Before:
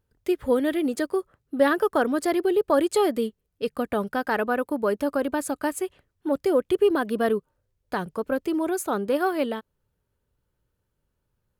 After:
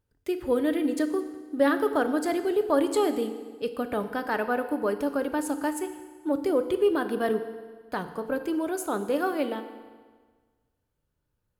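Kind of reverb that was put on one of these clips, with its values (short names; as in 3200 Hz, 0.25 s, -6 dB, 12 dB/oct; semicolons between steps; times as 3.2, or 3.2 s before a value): FDN reverb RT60 1.5 s, low-frequency decay 1×, high-frequency decay 0.9×, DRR 8 dB; gain -3.5 dB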